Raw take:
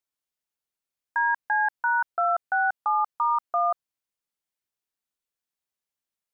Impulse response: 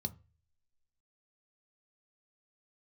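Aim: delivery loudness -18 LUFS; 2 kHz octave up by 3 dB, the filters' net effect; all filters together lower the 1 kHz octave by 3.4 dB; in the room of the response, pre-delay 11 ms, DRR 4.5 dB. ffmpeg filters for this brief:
-filter_complex "[0:a]equalizer=f=1000:t=o:g=-7,equalizer=f=2000:t=o:g=8.5,asplit=2[s0][s1];[1:a]atrim=start_sample=2205,adelay=11[s2];[s1][s2]afir=irnorm=-1:irlink=0,volume=0.668[s3];[s0][s3]amix=inputs=2:normalize=0,volume=2"

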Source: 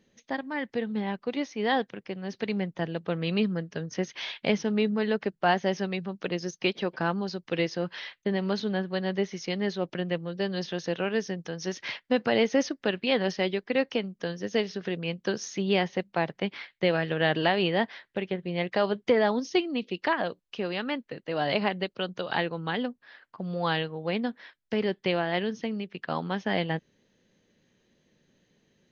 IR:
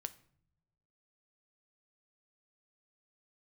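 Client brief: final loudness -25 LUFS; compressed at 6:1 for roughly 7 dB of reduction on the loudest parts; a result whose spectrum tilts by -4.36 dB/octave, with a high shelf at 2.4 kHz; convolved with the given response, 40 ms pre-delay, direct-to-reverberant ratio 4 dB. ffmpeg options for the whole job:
-filter_complex "[0:a]highshelf=f=2400:g=-3,acompressor=threshold=0.0501:ratio=6,asplit=2[s0][s1];[1:a]atrim=start_sample=2205,adelay=40[s2];[s1][s2]afir=irnorm=-1:irlink=0,volume=0.891[s3];[s0][s3]amix=inputs=2:normalize=0,volume=2.24"

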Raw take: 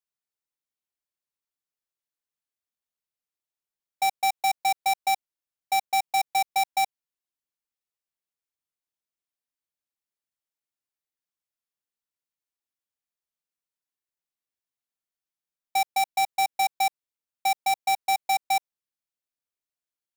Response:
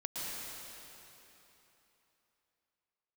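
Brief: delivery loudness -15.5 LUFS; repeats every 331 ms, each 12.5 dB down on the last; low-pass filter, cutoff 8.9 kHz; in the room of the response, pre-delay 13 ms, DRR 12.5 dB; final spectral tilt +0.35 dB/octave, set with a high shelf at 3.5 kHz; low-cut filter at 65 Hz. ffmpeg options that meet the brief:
-filter_complex "[0:a]highpass=65,lowpass=8900,highshelf=f=3500:g=4.5,aecho=1:1:331|662|993:0.237|0.0569|0.0137,asplit=2[s0][s1];[1:a]atrim=start_sample=2205,adelay=13[s2];[s1][s2]afir=irnorm=-1:irlink=0,volume=0.168[s3];[s0][s3]amix=inputs=2:normalize=0,volume=3.16"

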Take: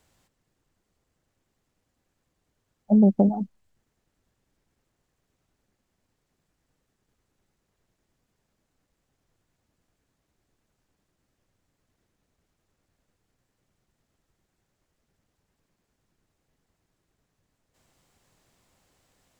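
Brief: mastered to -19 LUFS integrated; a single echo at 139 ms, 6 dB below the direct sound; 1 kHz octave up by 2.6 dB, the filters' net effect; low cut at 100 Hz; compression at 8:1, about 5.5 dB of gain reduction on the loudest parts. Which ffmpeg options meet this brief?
-af "highpass=100,equalizer=f=1000:t=o:g=4,acompressor=threshold=0.112:ratio=8,aecho=1:1:139:0.501,volume=2.24"

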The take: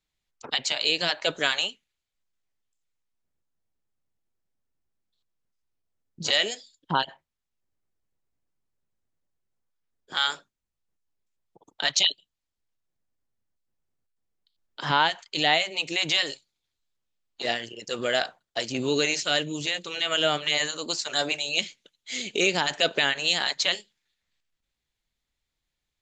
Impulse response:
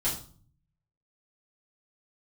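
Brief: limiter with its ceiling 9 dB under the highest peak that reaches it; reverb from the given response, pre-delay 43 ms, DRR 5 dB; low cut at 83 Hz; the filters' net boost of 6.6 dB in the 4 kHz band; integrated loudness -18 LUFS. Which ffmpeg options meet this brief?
-filter_complex "[0:a]highpass=83,equalizer=f=4000:t=o:g=8.5,alimiter=limit=0.335:level=0:latency=1,asplit=2[s0][s1];[1:a]atrim=start_sample=2205,adelay=43[s2];[s1][s2]afir=irnorm=-1:irlink=0,volume=0.251[s3];[s0][s3]amix=inputs=2:normalize=0,volume=1.5"

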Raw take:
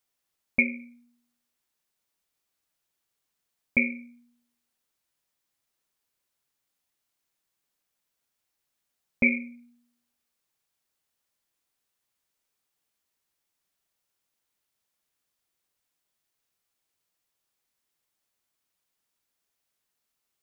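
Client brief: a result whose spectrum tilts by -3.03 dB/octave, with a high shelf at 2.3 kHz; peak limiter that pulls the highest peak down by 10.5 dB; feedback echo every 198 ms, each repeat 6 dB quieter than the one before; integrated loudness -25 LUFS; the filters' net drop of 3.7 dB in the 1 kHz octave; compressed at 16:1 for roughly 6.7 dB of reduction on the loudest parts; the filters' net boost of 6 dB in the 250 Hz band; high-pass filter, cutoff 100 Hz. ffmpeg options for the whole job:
-af "highpass=100,equalizer=f=250:t=o:g=6.5,equalizer=f=1000:t=o:g=-7,highshelf=f=2300:g=5.5,acompressor=threshold=0.1:ratio=16,alimiter=limit=0.112:level=0:latency=1,aecho=1:1:198|396|594|792|990|1188:0.501|0.251|0.125|0.0626|0.0313|0.0157,volume=3.35"

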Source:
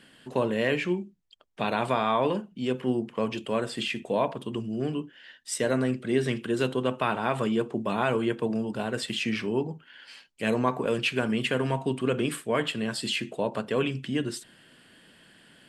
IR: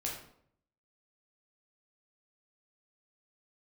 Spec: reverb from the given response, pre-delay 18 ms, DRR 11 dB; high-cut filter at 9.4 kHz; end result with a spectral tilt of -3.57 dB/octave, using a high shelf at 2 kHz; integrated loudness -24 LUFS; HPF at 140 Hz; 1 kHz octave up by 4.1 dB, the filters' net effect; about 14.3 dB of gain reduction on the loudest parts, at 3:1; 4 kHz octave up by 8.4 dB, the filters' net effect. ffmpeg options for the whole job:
-filter_complex "[0:a]highpass=140,lowpass=9400,equalizer=f=1000:t=o:g=3.5,highshelf=f=2000:g=5,equalizer=f=4000:t=o:g=6.5,acompressor=threshold=0.0141:ratio=3,asplit=2[s0][s1];[1:a]atrim=start_sample=2205,adelay=18[s2];[s1][s2]afir=irnorm=-1:irlink=0,volume=0.224[s3];[s0][s3]amix=inputs=2:normalize=0,volume=4.47"

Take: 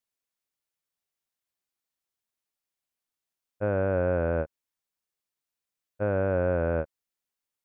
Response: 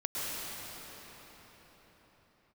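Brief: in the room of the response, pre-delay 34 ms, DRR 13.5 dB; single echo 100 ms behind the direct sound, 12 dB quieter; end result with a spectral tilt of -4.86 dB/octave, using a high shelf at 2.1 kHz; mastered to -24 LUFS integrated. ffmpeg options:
-filter_complex "[0:a]highshelf=f=2100:g=3,aecho=1:1:100:0.251,asplit=2[s0][s1];[1:a]atrim=start_sample=2205,adelay=34[s2];[s1][s2]afir=irnorm=-1:irlink=0,volume=0.0944[s3];[s0][s3]amix=inputs=2:normalize=0,volume=1.5"

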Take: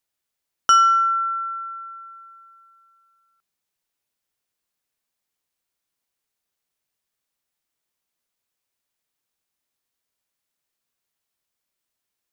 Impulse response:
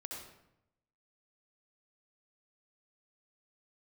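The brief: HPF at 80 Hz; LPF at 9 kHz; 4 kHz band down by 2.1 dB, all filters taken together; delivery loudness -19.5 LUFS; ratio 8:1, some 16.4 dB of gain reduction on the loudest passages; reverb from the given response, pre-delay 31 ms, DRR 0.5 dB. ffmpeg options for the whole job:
-filter_complex "[0:a]highpass=80,lowpass=9000,equalizer=f=4000:t=o:g=-3.5,acompressor=threshold=0.0316:ratio=8,asplit=2[s0][s1];[1:a]atrim=start_sample=2205,adelay=31[s2];[s1][s2]afir=irnorm=-1:irlink=0,volume=1.19[s3];[s0][s3]amix=inputs=2:normalize=0,volume=3.55"

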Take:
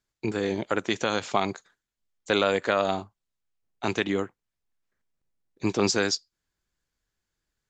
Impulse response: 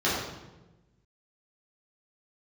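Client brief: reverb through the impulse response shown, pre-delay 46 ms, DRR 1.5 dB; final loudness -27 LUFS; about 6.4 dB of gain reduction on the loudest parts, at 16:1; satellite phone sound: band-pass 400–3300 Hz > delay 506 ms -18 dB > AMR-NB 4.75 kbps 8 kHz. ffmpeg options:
-filter_complex "[0:a]acompressor=threshold=0.0631:ratio=16,asplit=2[s0][s1];[1:a]atrim=start_sample=2205,adelay=46[s2];[s1][s2]afir=irnorm=-1:irlink=0,volume=0.168[s3];[s0][s3]amix=inputs=2:normalize=0,highpass=400,lowpass=3300,aecho=1:1:506:0.126,volume=2.51" -ar 8000 -c:a libopencore_amrnb -b:a 4750

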